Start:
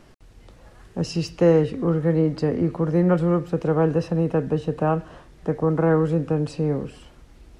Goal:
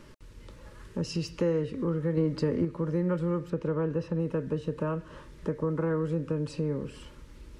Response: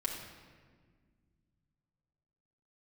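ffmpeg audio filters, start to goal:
-filter_complex "[0:a]asettb=1/sr,asplit=3[a][b][c];[a]atrim=end=2.174[d];[b]atrim=start=2.17:end=2.65,asetpts=PTS-STARTPTS,afade=t=in:d=0.004:c=qsin,afade=t=out:st=0.476:d=0.004:c=qsin,acontrast=39[e];[c]atrim=start=2.646[f];[d][e]acrossfade=d=0.004:c1=hsin:c2=qsin[g];[g][f]acrossfade=d=0.004:c1=qsin:c2=hsin,asettb=1/sr,asplit=3[h][i][j];[h]atrim=end=3.504[k];[i]atrim=start=3.5:end=4.2,asetpts=PTS-STARTPTS,afade=t=in:d=0.004:c=qsin,afade=t=out:st=0.696:d=0.004:c=qsin,lowpass=f=3.7k:p=1[l];[j]atrim=start=4.196[m];[k][l]acrossfade=d=0.004:c1=hsin:c2=qsin[n];[n][m]acrossfade=d=0.004:c1=qsin:c2=hsin,acompressor=threshold=-32dB:ratio=2,asuperstop=centerf=730:order=8:qfactor=3.5"

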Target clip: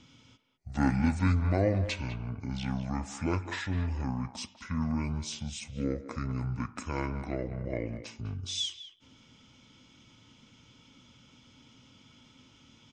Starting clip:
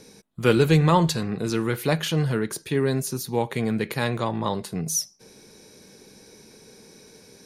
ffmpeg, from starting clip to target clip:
-filter_complex "[0:a]asetrate=25442,aresample=44100,asplit=2[a][b];[b]adelay=200,highpass=300,lowpass=3.4k,asoftclip=type=hard:threshold=-13.5dB,volume=-11dB[c];[a][c]amix=inputs=2:normalize=0,volume=-8.5dB"

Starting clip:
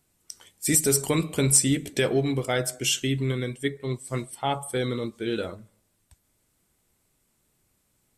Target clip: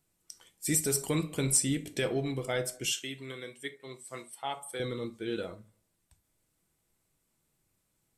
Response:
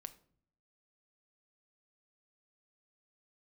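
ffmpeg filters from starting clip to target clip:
-filter_complex "[0:a]asettb=1/sr,asplit=3[a][b][c];[a]atrim=end=2.854[d];[b]atrim=start=2.85:end=4.8,asetpts=PTS-STARTPTS,afade=t=in:d=0.004:c=qsin,afade=t=out:st=1.946:d=0.004:c=qsin,highpass=f=670:p=1[e];[c]atrim=start=4.796[f];[d][e]acrossfade=d=0.004:c1=hsin:c2=qsin[g];[g][f]acrossfade=d=0.004:c1=qsin:c2=hsin[h];[1:a]atrim=start_sample=2205,atrim=end_sample=3528[i];[h][i]afir=irnorm=-1:irlink=0,volume=-1.5dB"

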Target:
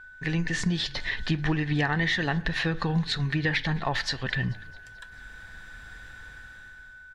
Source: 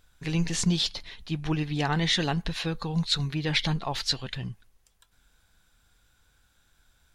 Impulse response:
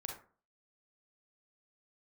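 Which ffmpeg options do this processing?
-filter_complex "[0:a]dynaudnorm=f=250:g=7:m=16dB,equalizer=f=1.8k:t=o:w=0.28:g=15,aeval=exprs='val(0)+0.00562*sin(2*PI*1500*n/s)':c=same,acompressor=threshold=-25dB:ratio=6,aemphasis=mode=reproduction:type=50fm,asplit=6[a][b][c][d][e][f];[b]adelay=218,afreqshift=-38,volume=-23.5dB[g];[c]adelay=436,afreqshift=-76,volume=-27.4dB[h];[d]adelay=654,afreqshift=-114,volume=-31.3dB[i];[e]adelay=872,afreqshift=-152,volume=-35.1dB[j];[f]adelay=1090,afreqshift=-190,volume=-39dB[k];[a][g][h][i][j][k]amix=inputs=6:normalize=0,asplit=2[l][m];[1:a]atrim=start_sample=2205[n];[m][n]afir=irnorm=-1:irlink=0,volume=-11.5dB[o];[l][o]amix=inputs=2:normalize=0"

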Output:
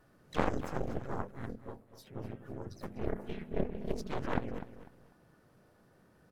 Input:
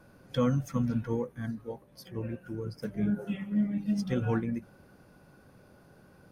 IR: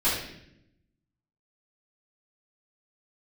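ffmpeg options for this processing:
-filter_complex "[0:a]asplit=4[a][b][c][d];[b]asetrate=35002,aresample=44100,atempo=1.25992,volume=-8dB[e];[c]asetrate=37084,aresample=44100,atempo=1.18921,volume=-5dB[f];[d]asetrate=52444,aresample=44100,atempo=0.840896,volume=-2dB[g];[a][e][f][g]amix=inputs=4:normalize=0,bandreject=f=50:t=h:w=6,bandreject=f=100:t=h:w=6,bandreject=f=150:t=h:w=6,bandreject=f=200:t=h:w=6,bandreject=f=250:t=h:w=6,aeval=exprs='0.251*(cos(1*acos(clip(val(0)/0.251,-1,1)))-cos(1*PI/2))+0.0708*(cos(2*acos(clip(val(0)/0.251,-1,1)))-cos(2*PI/2))+0.1*(cos(3*acos(clip(val(0)/0.251,-1,1)))-cos(3*PI/2))+0.00708*(cos(6*acos(clip(val(0)/0.251,-1,1)))-cos(6*PI/2))+0.00158*(cos(7*acos(clip(val(0)/0.251,-1,1)))-cos(7*PI/2))':c=same,aecho=1:1:248|496|744:0.211|0.055|0.0143,asplit=2[h][i];[i]alimiter=limit=-20.5dB:level=0:latency=1:release=445,volume=-2dB[j];[h][j]amix=inputs=2:normalize=0,volume=-3dB"

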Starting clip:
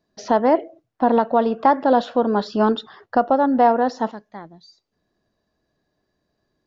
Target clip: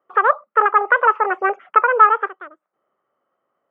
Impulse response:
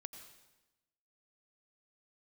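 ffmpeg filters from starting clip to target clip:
-af "asetrate=79380,aresample=44100,highpass=250,equalizer=f=280:t=q:w=4:g=-4,equalizer=f=570:t=q:w=4:g=5,equalizer=f=1.3k:t=q:w=4:g=9,lowpass=f=2.2k:w=0.5412,lowpass=f=2.2k:w=1.3066,volume=-2dB"

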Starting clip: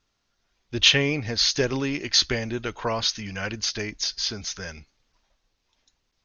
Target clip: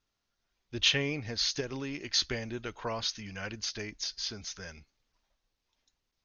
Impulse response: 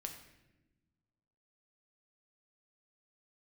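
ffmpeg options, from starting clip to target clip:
-filter_complex "[0:a]asettb=1/sr,asplit=3[a][b][c];[a]atrim=end=1.604[d];[b]atrim=start=1.6:end=2.1,asetpts=PTS-STARTPTS,afade=t=in:d=0.004:c=qsin,afade=t=out:st=0.496:d=0.004:c=qsin,acompressor=threshold=-24dB:ratio=6[e];[c]atrim=start=2.096[f];[d][e]acrossfade=d=0.004:c1=hsin:c2=qsin[g];[g][f]acrossfade=d=0.004:c1=qsin:c2=hsin,volume=-8.5dB"

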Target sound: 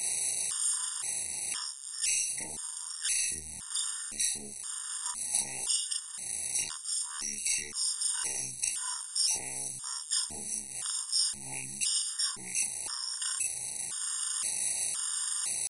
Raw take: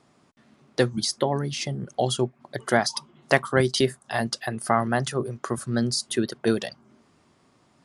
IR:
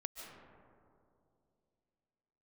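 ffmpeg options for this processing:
-filter_complex "[0:a]aeval=exprs='val(0)+0.5*0.0355*sgn(val(0))':c=same,aeval=exprs='0.794*(cos(1*acos(clip(val(0)/0.794,-1,1)))-cos(1*PI/2))+0.0158*(cos(2*acos(clip(val(0)/0.794,-1,1)))-cos(2*PI/2))+0.0447*(cos(4*acos(clip(val(0)/0.794,-1,1)))-cos(4*PI/2))+0.355*(cos(6*acos(clip(val(0)/0.794,-1,1)))-cos(6*PI/2))+0.0158*(cos(8*acos(clip(val(0)/0.794,-1,1)))-cos(8*PI/2))':c=same,equalizer=f=125:t=o:w=1:g=-11,equalizer=f=250:t=o:w=1:g=-9,equalizer=f=500:t=o:w=1:g=-11,equalizer=f=1k:t=o:w=1:g=-11,equalizer=f=4k:t=o:w=1:g=-4,equalizer=f=8k:t=o:w=1:g=-4,acrossover=split=95|490|5600[a][b][c][d];[a]acompressor=threshold=-32dB:ratio=4[e];[b]acompressor=threshold=-41dB:ratio=4[f];[c]acompressor=threshold=-42dB:ratio=4[g];[d]acompressor=threshold=-37dB:ratio=4[h];[e][f][g][h]amix=inputs=4:normalize=0,alimiter=limit=-24dB:level=0:latency=1:release=13,areverse,acompressor=mode=upward:threshold=-45dB:ratio=2.5,areverse,asetrate=49501,aresample=44100,atempo=0.890899,aemphasis=mode=production:type=riaa,asplit=2[i][j];[1:a]atrim=start_sample=2205,afade=t=out:st=0.14:d=0.01,atrim=end_sample=6615,adelay=19[k];[j][k]afir=irnorm=-1:irlink=0,volume=3dB[l];[i][l]amix=inputs=2:normalize=0,asetrate=22050,aresample=44100,afftfilt=real='re*gt(sin(2*PI*0.97*pts/sr)*(1-2*mod(floor(b*sr/1024/940),2)),0)':imag='im*gt(sin(2*PI*0.97*pts/sr)*(1-2*mod(floor(b*sr/1024/940),2)),0)':win_size=1024:overlap=0.75,volume=-7dB"

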